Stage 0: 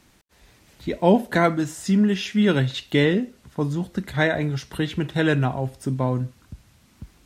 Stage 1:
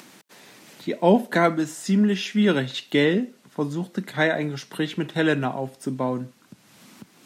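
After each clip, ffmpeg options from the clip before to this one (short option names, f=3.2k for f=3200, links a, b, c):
-af "highpass=f=170:w=0.5412,highpass=f=170:w=1.3066,acompressor=mode=upward:threshold=-39dB:ratio=2.5"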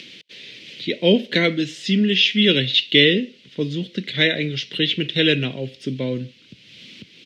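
-af "firequalizer=gain_entry='entry(100,0);entry(200,-6);entry(500,-3);entry(770,-24);entry(1200,-19);entry(2100,3);entry(3100,11);entry(7400,-14);entry(11000,-24)':delay=0.05:min_phase=1,volume=6.5dB"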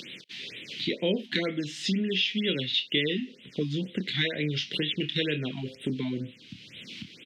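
-filter_complex "[0:a]acompressor=threshold=-28dB:ratio=3,asplit=2[a][b];[b]adelay=27,volume=-9dB[c];[a][c]amix=inputs=2:normalize=0,afftfilt=real='re*(1-between(b*sr/1024,450*pow(5800/450,0.5+0.5*sin(2*PI*2.1*pts/sr))/1.41,450*pow(5800/450,0.5+0.5*sin(2*PI*2.1*pts/sr))*1.41))':imag='im*(1-between(b*sr/1024,450*pow(5800/450,0.5+0.5*sin(2*PI*2.1*pts/sr))/1.41,450*pow(5800/450,0.5+0.5*sin(2*PI*2.1*pts/sr))*1.41))':win_size=1024:overlap=0.75"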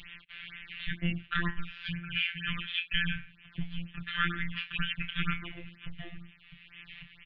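-af "highpass=f=200:t=q:w=0.5412,highpass=f=200:t=q:w=1.307,lowpass=f=3.4k:t=q:w=0.5176,lowpass=f=3.4k:t=q:w=0.7071,lowpass=f=3.4k:t=q:w=1.932,afreqshift=-320,afftfilt=real='hypot(re,im)*cos(PI*b)':imag='0':win_size=1024:overlap=0.75,adynamicequalizer=threshold=0.00355:dfrequency=1500:dqfactor=2:tfrequency=1500:tqfactor=2:attack=5:release=100:ratio=0.375:range=3:mode=boostabove:tftype=bell"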